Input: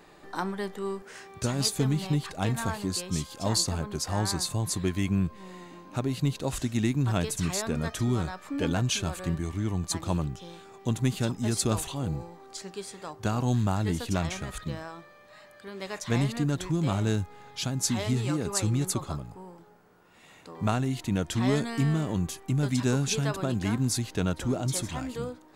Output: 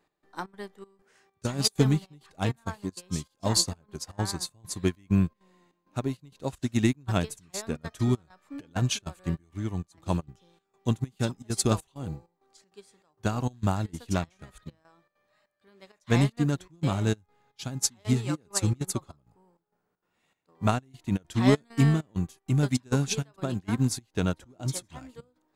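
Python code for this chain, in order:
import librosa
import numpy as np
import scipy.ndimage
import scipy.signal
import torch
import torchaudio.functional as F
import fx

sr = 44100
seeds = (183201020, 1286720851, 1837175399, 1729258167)

y = fx.step_gate(x, sr, bpm=197, pattern='x..xxx.xxxx..xxx', floor_db=-12.0, edge_ms=4.5)
y = fx.upward_expand(y, sr, threshold_db=-38.0, expansion=2.5)
y = F.gain(torch.from_numpy(y), 6.5).numpy()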